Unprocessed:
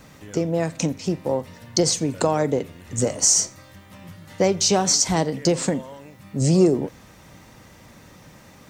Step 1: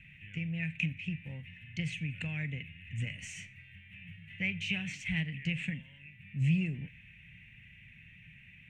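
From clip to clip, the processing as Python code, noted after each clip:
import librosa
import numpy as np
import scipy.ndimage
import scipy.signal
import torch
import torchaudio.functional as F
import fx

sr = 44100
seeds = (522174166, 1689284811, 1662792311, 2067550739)

y = fx.curve_eq(x, sr, hz=(160.0, 360.0, 1200.0, 1800.0, 2600.0, 4800.0, 8800.0, 14000.0), db=(0, -27, -28, 2, 14, -30, -22, -25))
y = y * 10.0 ** (-7.0 / 20.0)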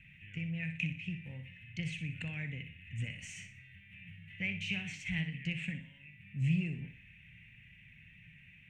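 y = fx.room_flutter(x, sr, wall_m=10.5, rt60_s=0.38)
y = y * 10.0 ** (-3.0 / 20.0)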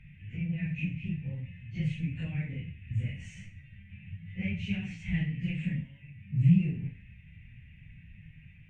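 y = fx.phase_scramble(x, sr, seeds[0], window_ms=100)
y = fx.tilt_eq(y, sr, slope=-3.0)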